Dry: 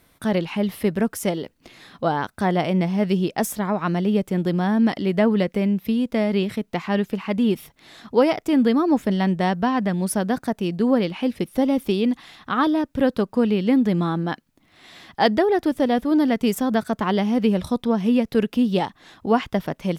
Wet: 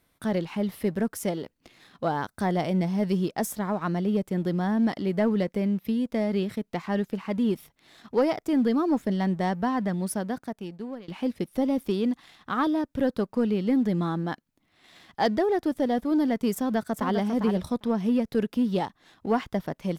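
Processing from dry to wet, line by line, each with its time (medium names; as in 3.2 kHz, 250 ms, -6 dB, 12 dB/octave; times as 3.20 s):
2.15–3.28 s: tone controls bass +1 dB, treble +4 dB
9.90–11.08 s: fade out, to -21 dB
16.54–17.17 s: echo throw 400 ms, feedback 10%, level -6.5 dB
whole clip: dynamic bell 2.7 kHz, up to -5 dB, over -45 dBFS, Q 2.2; waveshaping leveller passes 1; trim -8.5 dB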